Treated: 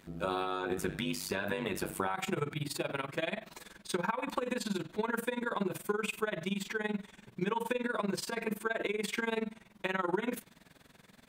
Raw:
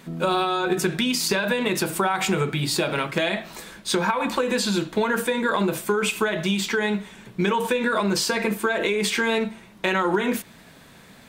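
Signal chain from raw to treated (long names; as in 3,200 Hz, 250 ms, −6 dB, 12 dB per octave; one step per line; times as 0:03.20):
dynamic equaliser 5,200 Hz, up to −6 dB, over −40 dBFS, Q 0.99
amplitude modulation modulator 97 Hz, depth 80%, from 0:02.14 modulator 21 Hz
level −7.5 dB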